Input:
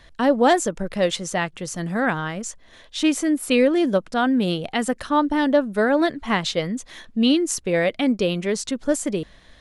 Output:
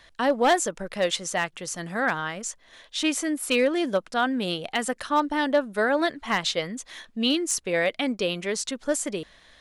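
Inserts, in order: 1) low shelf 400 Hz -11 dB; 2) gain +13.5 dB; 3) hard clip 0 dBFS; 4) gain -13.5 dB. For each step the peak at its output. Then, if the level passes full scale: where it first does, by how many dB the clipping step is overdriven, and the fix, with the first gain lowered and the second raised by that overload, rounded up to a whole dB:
-7.5, +6.0, 0.0, -13.5 dBFS; step 2, 6.0 dB; step 2 +7.5 dB, step 4 -7.5 dB

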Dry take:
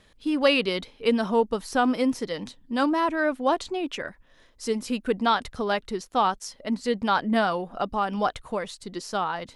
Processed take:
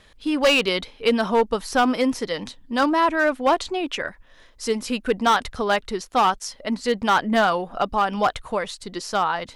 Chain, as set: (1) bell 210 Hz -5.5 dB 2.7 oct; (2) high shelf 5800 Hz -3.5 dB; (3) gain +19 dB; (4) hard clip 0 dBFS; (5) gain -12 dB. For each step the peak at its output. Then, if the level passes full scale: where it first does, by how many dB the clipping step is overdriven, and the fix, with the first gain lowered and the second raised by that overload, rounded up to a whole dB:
-10.0, -10.0, +9.0, 0.0, -12.0 dBFS; step 3, 9.0 dB; step 3 +10 dB, step 5 -3 dB

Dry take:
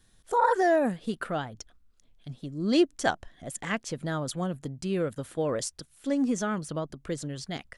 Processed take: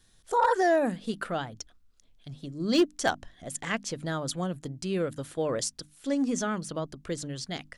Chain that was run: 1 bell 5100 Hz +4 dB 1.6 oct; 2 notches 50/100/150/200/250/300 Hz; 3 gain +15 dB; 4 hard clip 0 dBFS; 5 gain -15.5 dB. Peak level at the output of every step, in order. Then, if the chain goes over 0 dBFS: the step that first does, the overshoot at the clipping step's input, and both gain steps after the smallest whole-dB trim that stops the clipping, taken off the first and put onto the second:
-11.0, -10.0, +5.0, 0.0, -15.5 dBFS; step 3, 5.0 dB; step 3 +10 dB, step 5 -10.5 dB

